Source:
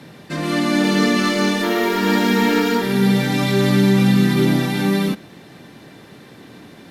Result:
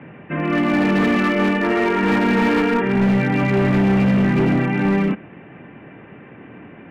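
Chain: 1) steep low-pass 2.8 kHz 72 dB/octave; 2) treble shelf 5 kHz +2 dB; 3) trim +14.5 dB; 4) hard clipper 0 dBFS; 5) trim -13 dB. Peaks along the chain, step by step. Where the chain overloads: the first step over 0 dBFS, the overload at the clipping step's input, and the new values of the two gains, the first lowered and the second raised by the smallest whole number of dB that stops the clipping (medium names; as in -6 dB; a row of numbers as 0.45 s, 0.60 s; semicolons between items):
-5.0 dBFS, -5.0 dBFS, +9.5 dBFS, 0.0 dBFS, -13.0 dBFS; step 3, 9.5 dB; step 3 +4.5 dB, step 5 -3 dB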